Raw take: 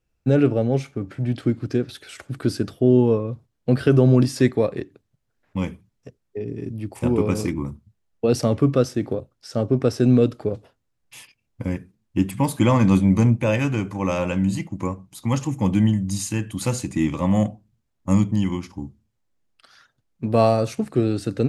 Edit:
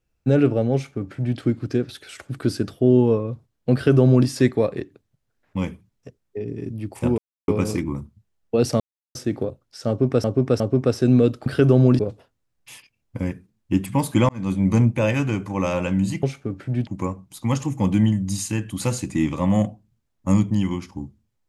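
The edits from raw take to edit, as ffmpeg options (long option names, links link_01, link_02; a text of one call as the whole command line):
ffmpeg -i in.wav -filter_complex "[0:a]asplit=11[link_01][link_02][link_03][link_04][link_05][link_06][link_07][link_08][link_09][link_10][link_11];[link_01]atrim=end=7.18,asetpts=PTS-STARTPTS,afade=type=out:start_time=7.176:duration=0.004:curve=hsin,apad=pad_dur=0.3[link_12];[link_02]atrim=start=7.18:end=8.5,asetpts=PTS-STARTPTS,afade=type=in:duration=0.004:curve=hsin,afade=type=out:start_time=1.316:duration=0.004:curve=hsin[link_13];[link_03]atrim=start=8.5:end=8.85,asetpts=PTS-STARTPTS,volume=0[link_14];[link_04]atrim=start=8.85:end=9.942,asetpts=PTS-STARTPTS,afade=type=in:duration=0.004:curve=hsin[link_15];[link_05]atrim=start=9.578:end=9.942[link_16];[link_06]atrim=start=9.578:end=10.442[link_17];[link_07]atrim=start=3.738:end=4.272[link_18];[link_08]atrim=start=10.438:end=12.74,asetpts=PTS-STARTPTS,afade=type=out:start_time=2.298:duration=0.004:curve=hsin[link_19];[link_09]atrim=start=12.74:end=14.682,asetpts=PTS-STARTPTS,afade=type=in:duration=0.48[link_20];[link_10]atrim=start=0.738:end=1.382[link_21];[link_11]atrim=start=14.678[link_22];[link_12][link_13][link_14][link_15]concat=n=4:v=0:a=1[link_23];[link_23][link_16]acrossfade=duration=0.004:curve1=hsin:curve2=hsin[link_24];[link_24][link_17]acrossfade=duration=0.004:curve1=hsin:curve2=hsin[link_25];[link_25][link_18]acrossfade=duration=0.004:curve1=hsin:curve2=hsin[link_26];[link_19][link_20]concat=n=2:v=0:a=1[link_27];[link_26][link_27]acrossfade=duration=0.004:curve1=hsin:curve2=hsin[link_28];[link_28][link_21]acrossfade=duration=0.004:curve1=hsin:curve2=hsin[link_29];[link_29][link_22]acrossfade=duration=0.004:curve1=hsin:curve2=hsin" out.wav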